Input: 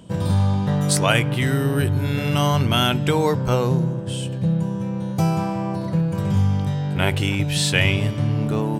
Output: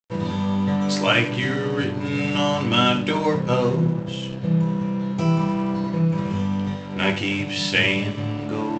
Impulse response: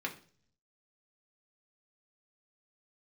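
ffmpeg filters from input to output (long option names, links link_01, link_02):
-filter_complex "[0:a]aecho=1:1:78:0.2[link_01];[1:a]atrim=start_sample=2205,asetrate=52920,aresample=44100[link_02];[link_01][link_02]afir=irnorm=-1:irlink=0,aresample=16000,aeval=exprs='sgn(val(0))*max(abs(val(0))-0.015,0)':channel_layout=same,aresample=44100"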